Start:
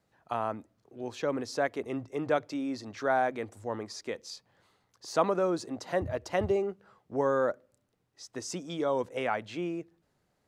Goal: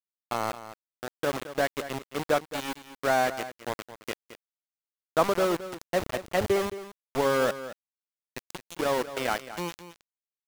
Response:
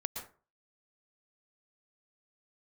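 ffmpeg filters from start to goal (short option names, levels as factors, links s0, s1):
-af "aeval=exprs='val(0)*gte(abs(val(0)),0.0355)':c=same,aecho=1:1:219:0.211,volume=1.41"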